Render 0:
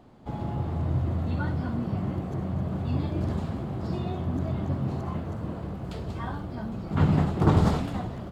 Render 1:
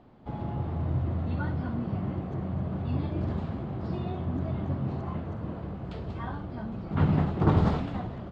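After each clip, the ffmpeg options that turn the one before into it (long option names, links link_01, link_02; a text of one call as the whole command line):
ffmpeg -i in.wav -af "lowpass=3700,volume=-2dB" out.wav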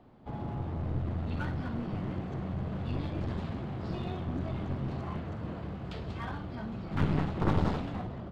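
ffmpeg -i in.wav -filter_complex "[0:a]acrossover=split=280|1600[link_01][link_02][link_03];[link_03]dynaudnorm=framelen=200:gausssize=11:maxgain=6.5dB[link_04];[link_01][link_02][link_04]amix=inputs=3:normalize=0,aeval=exprs='clip(val(0),-1,0.0237)':channel_layout=same,volume=-2dB" out.wav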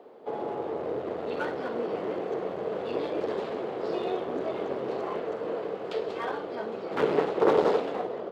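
ffmpeg -i in.wav -af "highpass=frequency=450:width_type=q:width=4.9,volume=5dB" out.wav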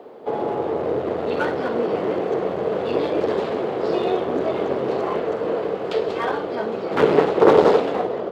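ffmpeg -i in.wav -af "lowshelf=frequency=110:gain=7,volume=8.5dB" out.wav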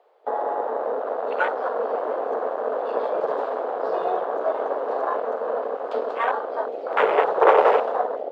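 ffmpeg -i in.wav -af "highpass=frequency=550:width=0.5412,highpass=frequency=550:width=1.3066,afwtdn=0.0447,volume=3dB" out.wav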